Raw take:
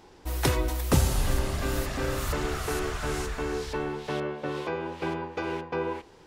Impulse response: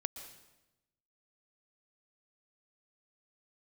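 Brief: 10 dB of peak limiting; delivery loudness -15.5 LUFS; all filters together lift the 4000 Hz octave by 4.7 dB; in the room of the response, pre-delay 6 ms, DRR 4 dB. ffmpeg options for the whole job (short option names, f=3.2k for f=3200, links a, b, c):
-filter_complex "[0:a]equalizer=f=4k:t=o:g=6,alimiter=limit=-20.5dB:level=0:latency=1,asplit=2[a][b];[1:a]atrim=start_sample=2205,adelay=6[c];[b][c]afir=irnorm=-1:irlink=0,volume=-3.5dB[d];[a][d]amix=inputs=2:normalize=0,volume=14.5dB"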